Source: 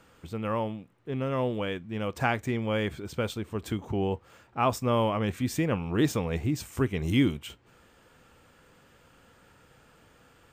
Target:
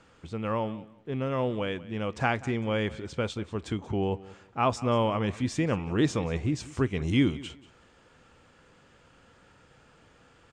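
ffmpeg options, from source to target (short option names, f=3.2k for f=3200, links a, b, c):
-filter_complex "[0:a]lowpass=f=7.8k:w=0.5412,lowpass=f=7.8k:w=1.3066,asplit=2[a][b];[b]aecho=0:1:185|370:0.112|0.0258[c];[a][c]amix=inputs=2:normalize=0"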